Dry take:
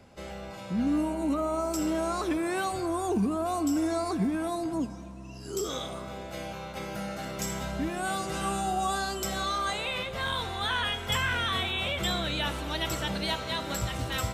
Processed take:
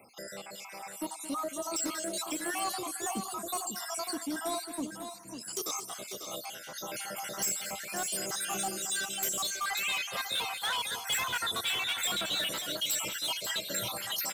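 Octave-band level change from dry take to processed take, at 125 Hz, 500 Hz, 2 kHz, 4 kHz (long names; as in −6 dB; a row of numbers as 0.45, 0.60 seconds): −16.5, −8.0, −2.5, 0.0 decibels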